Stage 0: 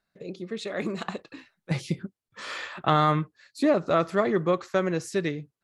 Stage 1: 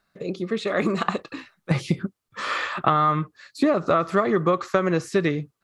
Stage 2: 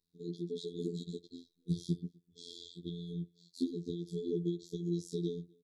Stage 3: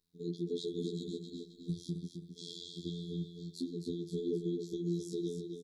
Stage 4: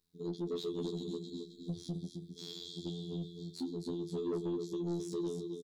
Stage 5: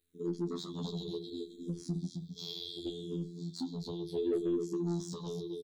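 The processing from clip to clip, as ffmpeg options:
ffmpeg -i in.wav -filter_complex "[0:a]acrossover=split=3400[link_01][link_02];[link_02]acompressor=threshold=-47dB:ratio=4:attack=1:release=60[link_03];[link_01][link_03]amix=inputs=2:normalize=0,equalizer=frequency=1200:width_type=o:width=0.29:gain=7.5,acompressor=threshold=-24dB:ratio=10,volume=8dB" out.wav
ffmpeg -i in.wav -filter_complex "[0:a]asplit=2[link_01][link_02];[link_02]adelay=250.7,volume=-29dB,highshelf=frequency=4000:gain=-5.64[link_03];[link_01][link_03]amix=inputs=2:normalize=0,afftfilt=real='hypot(re,im)*cos(PI*b)':imag='0':win_size=2048:overlap=0.75,afftfilt=real='re*(1-between(b*sr/4096,480,3200))':imag='im*(1-between(b*sr/4096,480,3200))':win_size=4096:overlap=0.75,volume=-8.5dB" out.wav
ffmpeg -i in.wav -filter_complex "[0:a]alimiter=level_in=5dB:limit=-24dB:level=0:latency=1:release=342,volume=-5dB,asplit=2[link_01][link_02];[link_02]aecho=0:1:264|528|792|1056:0.473|0.161|0.0547|0.0186[link_03];[link_01][link_03]amix=inputs=2:normalize=0,volume=3dB" out.wav
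ffmpeg -i in.wav -filter_complex "[0:a]asoftclip=type=tanh:threshold=-32dB,asplit=2[link_01][link_02];[link_02]adelay=26,volume=-14dB[link_03];[link_01][link_03]amix=inputs=2:normalize=0,volume=1.5dB" out.wav
ffmpeg -i in.wav -filter_complex "[0:a]asplit=2[link_01][link_02];[link_02]afreqshift=-0.69[link_03];[link_01][link_03]amix=inputs=2:normalize=1,volume=5dB" out.wav

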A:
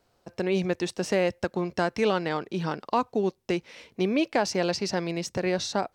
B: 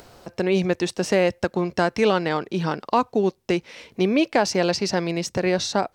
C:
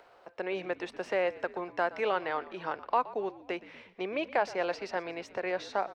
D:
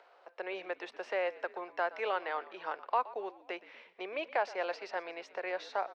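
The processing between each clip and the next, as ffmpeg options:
ffmpeg -i in.wav -af "acompressor=mode=upward:threshold=-40dB:ratio=2.5,volume=5dB" out.wav
ffmpeg -i in.wav -filter_complex "[0:a]acrossover=split=440 2900:gain=0.0891 1 0.1[link_01][link_02][link_03];[link_01][link_02][link_03]amix=inputs=3:normalize=0,asplit=6[link_04][link_05][link_06][link_07][link_08][link_09];[link_05]adelay=120,afreqshift=-55,volume=-18dB[link_10];[link_06]adelay=240,afreqshift=-110,volume=-23.2dB[link_11];[link_07]adelay=360,afreqshift=-165,volume=-28.4dB[link_12];[link_08]adelay=480,afreqshift=-220,volume=-33.6dB[link_13];[link_09]adelay=600,afreqshift=-275,volume=-38.8dB[link_14];[link_04][link_10][link_11][link_12][link_13][link_14]amix=inputs=6:normalize=0,volume=-6dB" out.wav
ffmpeg -i in.wav -filter_complex "[0:a]acrossover=split=370 6300:gain=0.0708 1 0.2[link_01][link_02][link_03];[link_01][link_02][link_03]amix=inputs=3:normalize=0,volume=-2.5dB" out.wav

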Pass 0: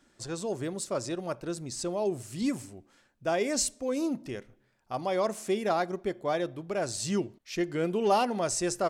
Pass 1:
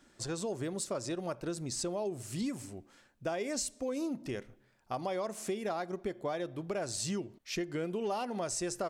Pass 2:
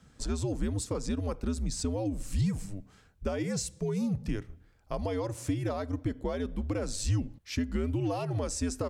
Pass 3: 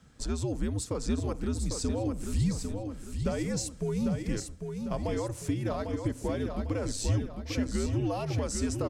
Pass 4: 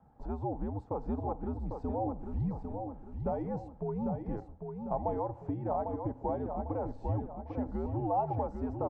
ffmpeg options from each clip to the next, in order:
ffmpeg -i in.wav -af "acompressor=threshold=-34dB:ratio=6,volume=1.5dB" out.wav
ffmpeg -i in.wav -af "afreqshift=-94,lowshelf=frequency=210:gain=11" out.wav
ffmpeg -i in.wav -af "aecho=1:1:799|1598|2397|3196|3995:0.501|0.2|0.0802|0.0321|0.0128" out.wav
ffmpeg -i in.wav -af "lowpass=frequency=830:width_type=q:width=9.1,volume=-6dB" out.wav

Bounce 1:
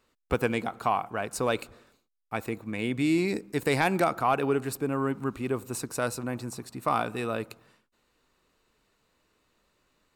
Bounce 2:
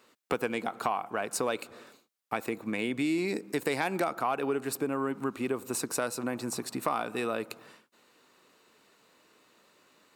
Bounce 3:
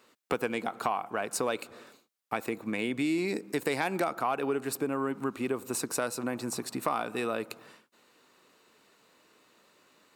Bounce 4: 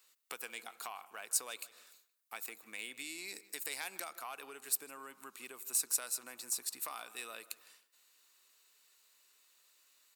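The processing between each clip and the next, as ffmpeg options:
ffmpeg -i in.wav -af "highpass=210,acompressor=threshold=-39dB:ratio=3,volume=8.5dB" out.wav
ffmpeg -i in.wav -af anull out.wav
ffmpeg -i in.wav -filter_complex "[0:a]aderivative,asplit=2[link_01][link_02];[link_02]adelay=157,lowpass=frequency=4200:poles=1,volume=-18dB,asplit=2[link_03][link_04];[link_04]adelay=157,lowpass=frequency=4200:poles=1,volume=0.31,asplit=2[link_05][link_06];[link_06]adelay=157,lowpass=frequency=4200:poles=1,volume=0.31[link_07];[link_01][link_03][link_05][link_07]amix=inputs=4:normalize=0,volume=1.5dB" out.wav

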